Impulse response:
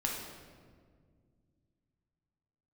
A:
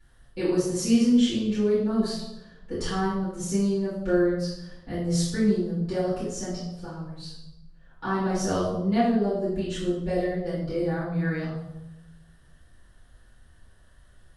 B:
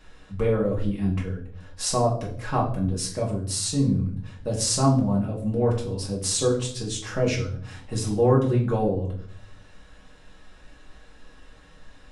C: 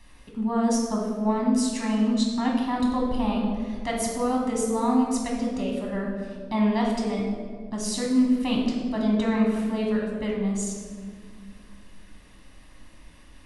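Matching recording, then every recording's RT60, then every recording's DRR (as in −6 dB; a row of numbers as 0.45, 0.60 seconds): C; 0.95, 0.60, 1.9 seconds; −12.5, −3.5, −2.0 decibels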